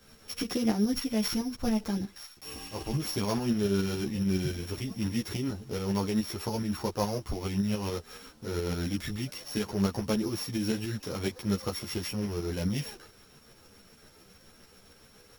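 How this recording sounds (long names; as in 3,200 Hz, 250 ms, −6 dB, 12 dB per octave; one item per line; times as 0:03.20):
a buzz of ramps at a fixed pitch in blocks of 8 samples
tremolo saw up 7.1 Hz, depth 50%
a quantiser's noise floor 10 bits, dither none
a shimmering, thickened sound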